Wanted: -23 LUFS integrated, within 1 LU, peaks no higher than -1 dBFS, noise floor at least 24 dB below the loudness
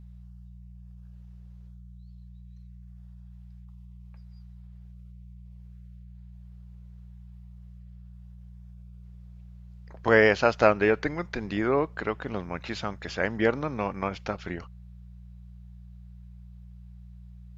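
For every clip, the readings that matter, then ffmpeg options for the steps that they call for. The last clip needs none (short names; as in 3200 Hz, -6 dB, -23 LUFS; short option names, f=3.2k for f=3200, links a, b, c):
hum 60 Hz; harmonics up to 180 Hz; hum level -44 dBFS; loudness -26.5 LUFS; peak -3.0 dBFS; loudness target -23.0 LUFS
-> -af "bandreject=f=60:t=h:w=4,bandreject=f=120:t=h:w=4,bandreject=f=180:t=h:w=4"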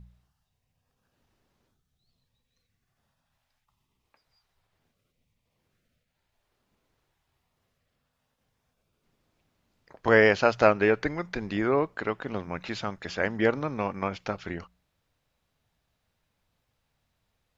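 hum none; loudness -26.5 LUFS; peak -3.0 dBFS; loudness target -23.0 LUFS
-> -af "volume=3.5dB,alimiter=limit=-1dB:level=0:latency=1"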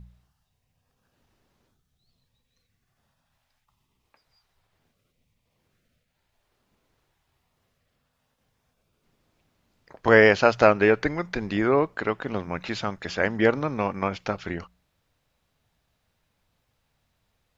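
loudness -23.0 LUFS; peak -1.0 dBFS; noise floor -75 dBFS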